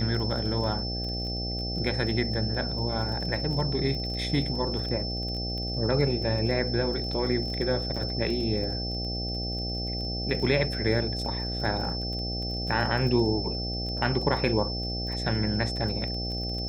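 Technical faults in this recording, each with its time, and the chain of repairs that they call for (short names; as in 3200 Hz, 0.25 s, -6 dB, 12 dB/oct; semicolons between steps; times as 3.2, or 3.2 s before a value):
buzz 60 Hz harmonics 13 -33 dBFS
crackle 21/s -34 dBFS
tone 5300 Hz -33 dBFS
7.96–7.97 gap 5.5 ms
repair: de-click; de-hum 60 Hz, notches 13; notch 5300 Hz, Q 30; interpolate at 7.96, 5.5 ms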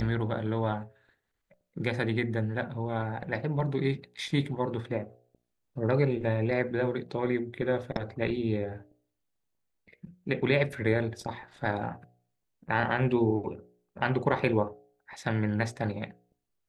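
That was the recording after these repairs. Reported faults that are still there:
none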